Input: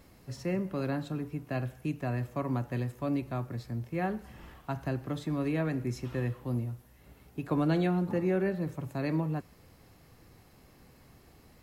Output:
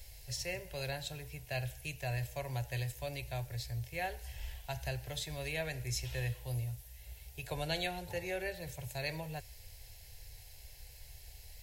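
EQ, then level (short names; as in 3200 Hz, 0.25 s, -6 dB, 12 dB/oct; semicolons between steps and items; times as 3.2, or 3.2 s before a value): passive tone stack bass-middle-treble 10-0-10; low shelf 110 Hz +7.5 dB; fixed phaser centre 500 Hz, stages 4; +11.5 dB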